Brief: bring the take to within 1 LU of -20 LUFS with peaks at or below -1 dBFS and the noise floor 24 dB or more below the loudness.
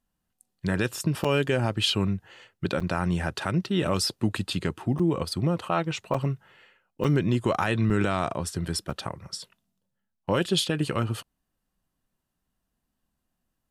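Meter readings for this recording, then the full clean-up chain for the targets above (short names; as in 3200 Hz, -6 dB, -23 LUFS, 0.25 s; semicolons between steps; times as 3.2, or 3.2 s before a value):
dropouts 7; longest dropout 5.3 ms; loudness -27.0 LUFS; peak -11.5 dBFS; loudness target -20.0 LUFS
-> interpolate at 1.24/2.8/4.99/6.14/7.04/7.9/8.9, 5.3 ms; gain +7 dB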